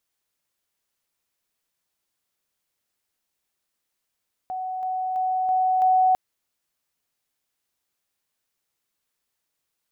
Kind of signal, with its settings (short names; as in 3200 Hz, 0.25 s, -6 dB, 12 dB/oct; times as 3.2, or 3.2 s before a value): level ladder 746 Hz -27 dBFS, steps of 3 dB, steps 5, 0.33 s 0.00 s